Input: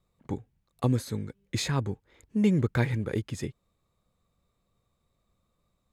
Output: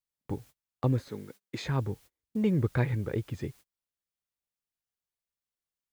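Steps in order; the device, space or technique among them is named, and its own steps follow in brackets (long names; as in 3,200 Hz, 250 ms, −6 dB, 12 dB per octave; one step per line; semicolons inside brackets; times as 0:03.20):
dynamic equaliser 220 Hz, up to −4 dB, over −40 dBFS, Q 2.3
cassette deck with a dirty head (head-to-tape spacing loss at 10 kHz 21 dB; tape wow and flutter; white noise bed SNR 29 dB)
0:01.08–0:01.65: high-pass filter 220 Hz 12 dB per octave
noise gate −49 dBFS, range −33 dB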